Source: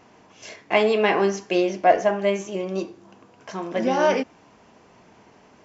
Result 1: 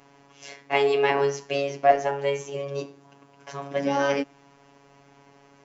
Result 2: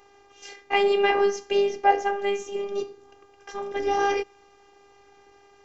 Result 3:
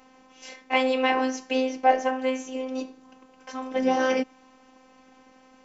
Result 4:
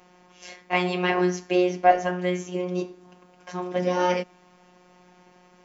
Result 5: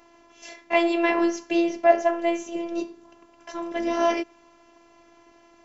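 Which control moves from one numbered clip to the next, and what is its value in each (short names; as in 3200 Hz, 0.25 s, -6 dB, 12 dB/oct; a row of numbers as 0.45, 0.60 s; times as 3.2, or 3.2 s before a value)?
robotiser, frequency: 140, 400, 260, 180, 340 Hz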